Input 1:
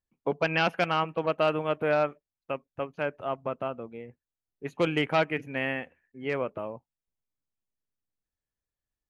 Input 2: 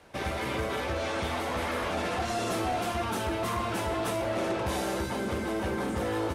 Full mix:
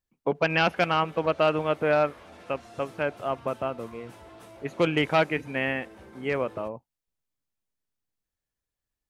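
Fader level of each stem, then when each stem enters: +2.5 dB, -18.0 dB; 0.00 s, 0.35 s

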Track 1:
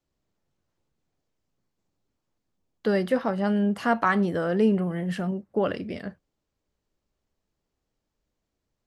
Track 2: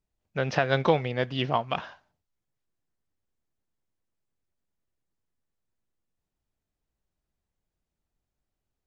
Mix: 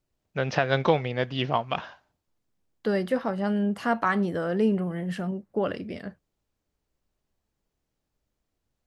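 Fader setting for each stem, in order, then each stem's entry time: -2.0 dB, +0.5 dB; 0.00 s, 0.00 s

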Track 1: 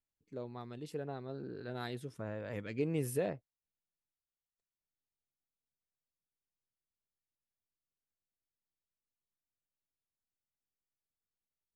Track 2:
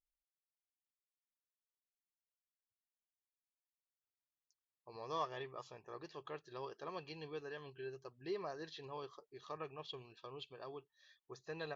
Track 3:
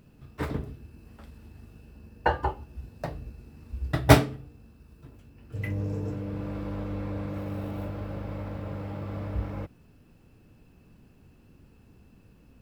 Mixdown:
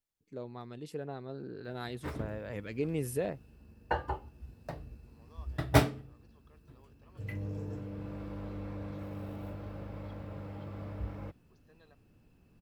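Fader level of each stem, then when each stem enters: +1.0 dB, -18.5 dB, -7.5 dB; 0.00 s, 0.20 s, 1.65 s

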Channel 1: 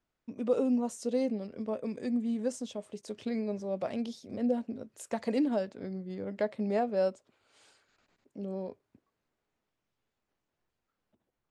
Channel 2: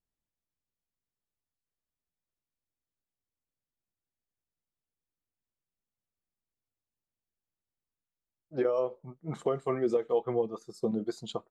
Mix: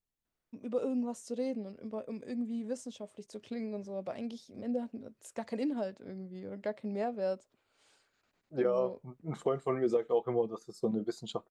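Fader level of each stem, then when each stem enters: -5.0 dB, -1.5 dB; 0.25 s, 0.00 s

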